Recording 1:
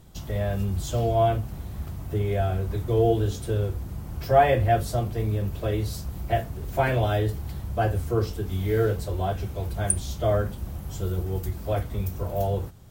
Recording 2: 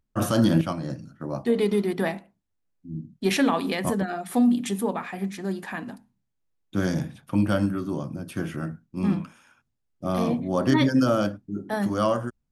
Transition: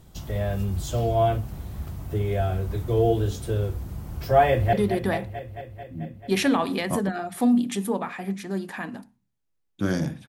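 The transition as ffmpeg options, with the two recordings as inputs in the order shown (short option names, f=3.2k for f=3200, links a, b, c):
-filter_complex "[0:a]apad=whole_dur=10.28,atrim=end=10.28,atrim=end=4.732[a];[1:a]atrim=start=1.668:end=7.22[b];[a][b]acrossfade=d=0.004:c1=hsin:c2=hsin,asplit=2[c][d];[d]afade=t=in:st=4.46:d=0.01,afade=t=out:st=4.73:d=0.01,aecho=0:1:220|440|660|880|1100|1320|1540|1760|1980|2200|2420|2640:0.354813|0.26611|0.199583|0.149687|0.112265|0.0841989|0.0631492|0.0473619|0.0355214|0.0266411|0.0199808|0.0149856[e];[c][e]amix=inputs=2:normalize=0"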